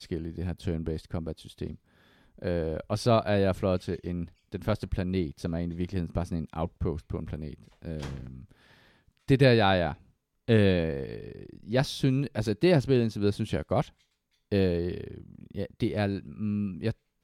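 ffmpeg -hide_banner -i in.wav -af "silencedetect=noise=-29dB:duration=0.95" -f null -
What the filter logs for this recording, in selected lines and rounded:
silence_start: 8.15
silence_end: 9.30 | silence_duration: 1.15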